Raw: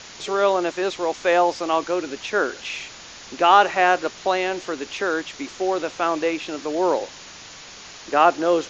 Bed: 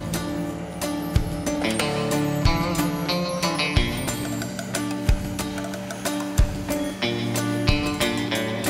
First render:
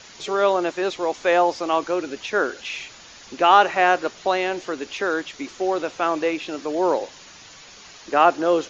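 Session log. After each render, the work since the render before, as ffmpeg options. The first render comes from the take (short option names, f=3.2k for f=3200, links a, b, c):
-af "afftdn=nr=6:nf=-41"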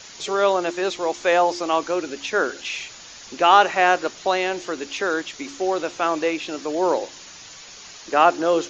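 -af "highshelf=f=6k:g=9.5,bandreject=f=69.88:t=h:w=4,bandreject=f=139.76:t=h:w=4,bandreject=f=209.64:t=h:w=4,bandreject=f=279.52:t=h:w=4,bandreject=f=349.4:t=h:w=4"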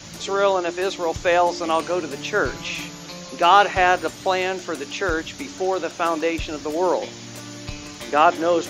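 -filter_complex "[1:a]volume=-13.5dB[a];[0:a][a]amix=inputs=2:normalize=0"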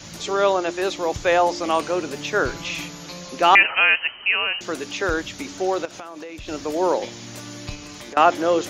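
-filter_complex "[0:a]asettb=1/sr,asplit=3[a][b][c];[a]atrim=end=3.554[d];[b]atrim=start=3.55:end=4.61,asetpts=PTS-STARTPTS,afade=t=in:d=0.004:c=qsin,afade=t=out:st=1.056:d=0.004:c=qsin,lowpass=f=2.7k:t=q:w=0.5098,lowpass=f=2.7k:t=q:w=0.6013,lowpass=f=2.7k:t=q:w=0.9,lowpass=f=2.7k:t=q:w=2.563,afreqshift=-3200[e];[c]atrim=start=4.606[f];[d][e]acrossfade=d=0.004:c1=hsin:c2=qsin[g];[g][f]acrossfade=d=0.004:c1=qsin:c2=hsin,asettb=1/sr,asplit=3[h][i][j];[h]atrim=end=5.854[k];[i]atrim=start=5.85:end=6.48,asetpts=PTS-STARTPTS,afade=t=in:d=0.004:c=qsin,afade=t=out:st=0.626:d=0.004:c=qsin,acompressor=threshold=-32dB:ratio=10:attack=3.2:release=140:knee=1:detection=peak[l];[j]atrim=start=6.476[m];[k][l]acrossfade=d=0.004:c1=hsin:c2=qsin[n];[n][m]acrossfade=d=0.004:c1=qsin:c2=hsin,asettb=1/sr,asplit=3[o][p][q];[o]atrim=end=7.754[r];[p]atrim=start=7.75:end=8.17,asetpts=PTS-STARTPTS,afade=t=in:d=0.004:c=qsin,afade=t=out:st=0.416:d=0.004:c=qsin,acompressor=threshold=-33dB:ratio=10:attack=3.2:release=140:knee=1:detection=peak[s];[q]atrim=start=8.166[t];[r][s]acrossfade=d=0.004:c1=hsin:c2=qsin[u];[u][t]acrossfade=d=0.004:c1=qsin:c2=hsin"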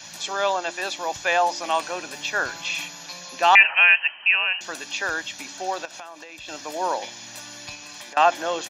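-af "highpass=f=870:p=1,aecho=1:1:1.2:0.52"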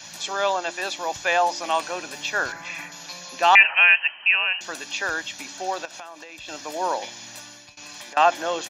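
-filter_complex "[0:a]asettb=1/sr,asplit=3[a][b][c];[a]atrim=end=2.524[d];[b]atrim=start=2.52:end=2.92,asetpts=PTS-STARTPTS,afade=t=in:d=0.004:c=qsin,afade=t=out:st=0.396:d=0.004:c=qsin,highshelf=f=2.4k:t=q:w=3:g=-7.5[e];[c]atrim=start=2.916[f];[d][e]acrossfade=d=0.004:c1=hsin:c2=qsin[g];[g][f]acrossfade=d=0.004:c1=qsin:c2=hsin,asplit=2[h][i];[h]atrim=end=7.77,asetpts=PTS-STARTPTS,afade=t=out:st=7.16:d=0.61:c=qsin:silence=0.0891251[j];[i]atrim=start=7.77,asetpts=PTS-STARTPTS,afade=t=in:d=0.004:c=hsin:silence=0.0891251[k];[j][k]concat=n=2:v=0:a=1"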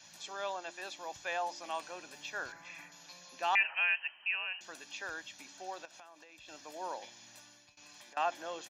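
-af "volume=-15.5dB"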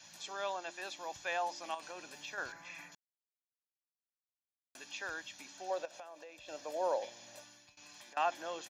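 -filter_complex "[0:a]asettb=1/sr,asplit=3[a][b][c];[a]atrim=end=1.744[d];[b]atrim=start=1.74:end=2.38,asetpts=PTS-STARTPTS,afade=t=in:d=0.004:c=qsin,afade=t=out:st=0.636:d=0.004:c=qsin,acompressor=threshold=-40dB:ratio=6:attack=3.2:release=140:knee=1:detection=peak[e];[c]atrim=start=2.376[f];[d][e]acrossfade=d=0.004:c1=hsin:c2=qsin[g];[g][f]acrossfade=d=0.004:c1=qsin:c2=hsin,asettb=1/sr,asplit=3[h][i][j];[h]atrim=end=5.704[k];[i]atrim=start=5.7:end=7.44,asetpts=PTS-STARTPTS,afade=t=in:d=0.004:c=qsin,afade=t=out:st=1.736:d=0.004:c=qsin,equalizer=f=550:t=o:w=0.68:g=13[l];[j]atrim=start=7.436[m];[k][l]acrossfade=d=0.004:c1=hsin:c2=qsin[n];[n][m]acrossfade=d=0.004:c1=qsin:c2=hsin,asplit=3[o][p][q];[o]atrim=end=2.95,asetpts=PTS-STARTPTS,afade=t=out:st=2.946:d=0.004:c=hsin[r];[p]atrim=start=2.95:end=4.75,asetpts=PTS-STARTPTS,volume=0[s];[q]atrim=start=4.75,asetpts=PTS-STARTPTS,afade=t=in:d=0.004:c=hsin[t];[r][s][t]concat=n=3:v=0:a=1"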